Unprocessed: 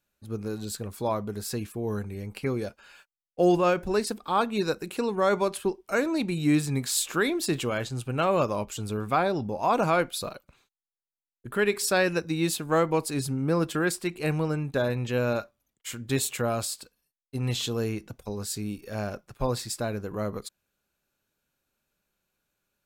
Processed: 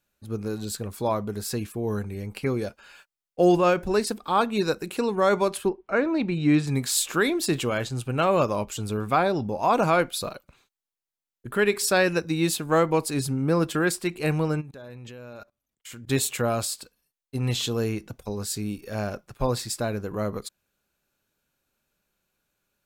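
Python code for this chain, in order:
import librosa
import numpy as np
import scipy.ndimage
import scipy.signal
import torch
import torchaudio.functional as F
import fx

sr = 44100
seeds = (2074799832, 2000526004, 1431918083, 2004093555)

y = fx.lowpass(x, sr, hz=fx.line((5.68, 1800.0), (6.66, 4700.0)), slope=12, at=(5.68, 6.66), fade=0.02)
y = fx.level_steps(y, sr, step_db=22, at=(14.6, 16.06), fade=0.02)
y = y * 10.0 ** (2.5 / 20.0)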